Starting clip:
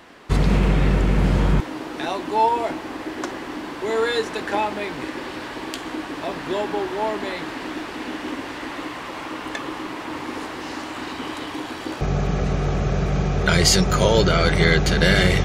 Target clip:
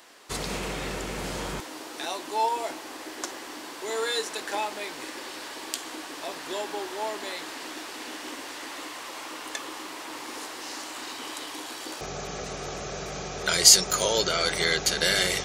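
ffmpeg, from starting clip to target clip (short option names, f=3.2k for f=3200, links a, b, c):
-af "bass=f=250:g=-15,treble=f=4k:g=14,volume=-7dB"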